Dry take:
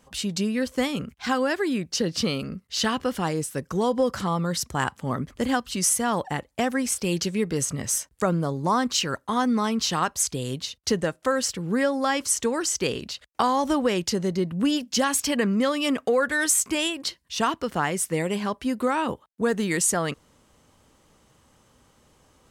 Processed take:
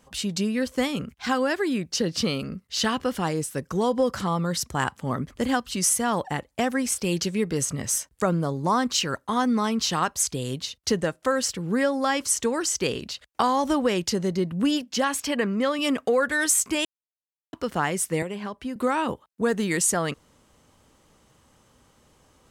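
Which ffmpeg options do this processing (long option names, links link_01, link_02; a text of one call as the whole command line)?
ffmpeg -i in.wav -filter_complex "[0:a]asettb=1/sr,asplit=3[link_01][link_02][link_03];[link_01]atrim=end=14.814[link_04];[link_02]atrim=start=14.81:end=15.79,asetpts=PTS-STARTPTS,afade=type=in:duration=0.004:curve=qsin,afade=type=out:start_time=0.976:duration=0.004:curve=qsin,bass=frequency=250:gain=-5,treble=frequency=4000:gain=-6[link_05];[link_03]atrim=start=15.786[link_06];[link_04][link_05]acrossfade=duration=0.004:curve1=hsin:curve2=qsin[link_07];[link_07][link_06]acrossfade=duration=0.004:curve1=qsin:curve2=hsin,asettb=1/sr,asplit=3[link_08][link_09][link_10];[link_08]atrim=end=18.224[link_11];[link_09]atrim=start=18.22:end=18.76,asetpts=PTS-STARTPTS,afade=type=in:duration=0.004:curve=qsin,afade=type=out:start_time=0.536:duration=0.004:curve=qsin,acrossover=split=190|3500[link_12][link_13][link_14];[link_12]acompressor=threshold=-44dB:ratio=4[link_15];[link_13]acompressor=threshold=-31dB:ratio=4[link_16];[link_14]acompressor=threshold=-56dB:ratio=4[link_17];[link_15][link_16][link_17]amix=inputs=3:normalize=0[link_18];[link_10]atrim=start=18.756[link_19];[link_11][link_18]acrossfade=duration=0.004:curve1=hsin:curve2=qsin[link_20];[link_20][link_19]acrossfade=duration=0.004:curve1=qsin:curve2=hsin,asplit=3[link_21][link_22][link_23];[link_21]atrim=end=16.85,asetpts=PTS-STARTPTS,afade=type=out:start_time=16.846:duration=0.004:curve=hsin[link_24];[link_22]atrim=start=16.85:end=17.53,asetpts=PTS-STARTPTS,volume=0[link_25];[link_23]atrim=start=17.53,asetpts=PTS-STARTPTS,afade=type=in:duration=0.004:curve=hsin[link_26];[link_24][link_25][link_26]concat=n=3:v=0:a=1" out.wav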